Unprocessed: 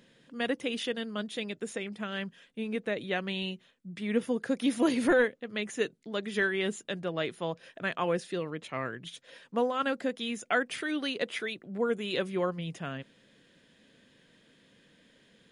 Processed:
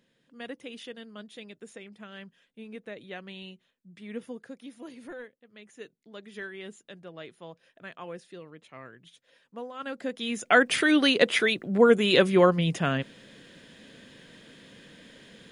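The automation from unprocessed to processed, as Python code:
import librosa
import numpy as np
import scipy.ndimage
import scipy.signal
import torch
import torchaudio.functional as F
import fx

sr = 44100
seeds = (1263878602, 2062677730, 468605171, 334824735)

y = fx.gain(x, sr, db=fx.line((4.3, -9.0), (4.73, -18.0), (5.46, -18.0), (6.09, -11.0), (9.69, -11.0), (10.03, -2.0), (10.71, 11.0)))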